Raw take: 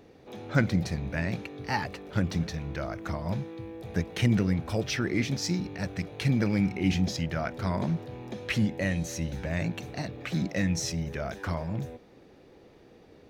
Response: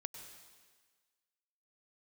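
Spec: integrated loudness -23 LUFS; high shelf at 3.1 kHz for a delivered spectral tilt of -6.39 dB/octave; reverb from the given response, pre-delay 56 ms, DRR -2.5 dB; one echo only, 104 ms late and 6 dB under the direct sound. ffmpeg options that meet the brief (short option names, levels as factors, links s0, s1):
-filter_complex "[0:a]highshelf=f=3100:g=-5,aecho=1:1:104:0.501,asplit=2[s0][s1];[1:a]atrim=start_sample=2205,adelay=56[s2];[s1][s2]afir=irnorm=-1:irlink=0,volume=1.88[s3];[s0][s3]amix=inputs=2:normalize=0,volume=1.26"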